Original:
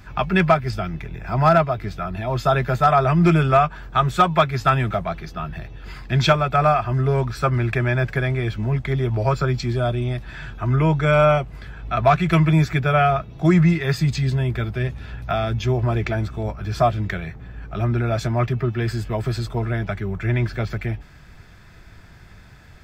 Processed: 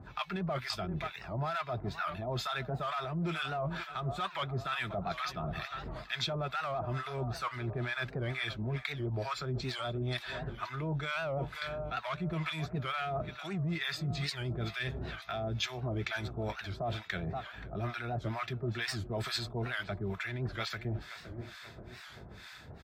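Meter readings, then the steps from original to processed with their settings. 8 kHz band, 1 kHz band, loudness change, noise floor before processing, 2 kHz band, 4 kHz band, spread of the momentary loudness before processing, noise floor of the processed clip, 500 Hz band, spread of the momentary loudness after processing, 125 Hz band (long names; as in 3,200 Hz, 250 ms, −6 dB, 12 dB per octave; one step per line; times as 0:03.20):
can't be measured, −16.5 dB, −15.5 dB, −45 dBFS, −10.5 dB, −5.5 dB, 13 LU, −50 dBFS, −16.5 dB, 5 LU, −17.0 dB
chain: tape delay 527 ms, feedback 58%, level −17 dB, low-pass 4,800 Hz
in parallel at −6 dB: hard clipping −16 dBFS, distortion −10 dB
on the sum: low-shelf EQ 290 Hz −5.5 dB
brickwall limiter −13.5 dBFS, peak gain reduction 9 dB
two-band tremolo in antiphase 2.2 Hz, depth 100%, crossover 910 Hz
reversed playback
downward compressor 6 to 1, threshold −33 dBFS, peak gain reduction 15 dB
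reversed playback
downsampling to 32,000 Hz
high-pass filter 60 Hz
parametric band 3,800 Hz +8.5 dB 0.4 octaves
wow of a warped record 78 rpm, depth 160 cents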